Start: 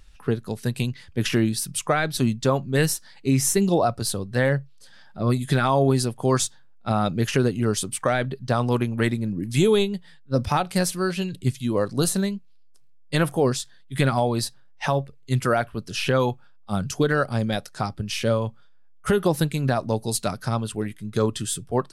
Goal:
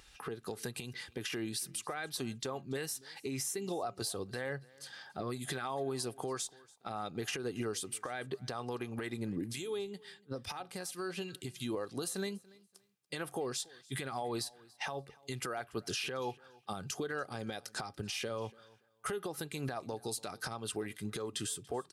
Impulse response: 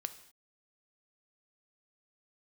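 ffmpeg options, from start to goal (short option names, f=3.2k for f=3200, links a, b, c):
-filter_complex "[0:a]highpass=f=360:p=1,aecho=1:1:2.5:0.34,acompressor=threshold=-32dB:ratio=16,alimiter=level_in=5.5dB:limit=-24dB:level=0:latency=1:release=179,volume=-5.5dB,asettb=1/sr,asplit=3[a][b][c];[a]atrim=end=9.414[d];[b]atrim=start=9.41:end=11.56,asetpts=PTS-STARTPTS,afade=t=in:d=0.004:c=qsin,afade=t=out:st=2.146:d=0.004:c=qsin,acrossover=split=1500[e][f];[e]aeval=exprs='val(0)*(1-0.5/2+0.5/2*cos(2*PI*2.3*n/s))':c=same[g];[f]aeval=exprs='val(0)*(1-0.5/2-0.5/2*cos(2*PI*2.3*n/s))':c=same[h];[g][h]amix=inputs=2:normalize=0[i];[c]atrim=start=11.556[j];[d][i]acrossfade=d=0.004:c1=hsin:c2=qsin[k];[k][j]acrossfade=d=0.004:c1=qsin:c2=hsin,aecho=1:1:286|572:0.0668|0.014,volume=2.5dB"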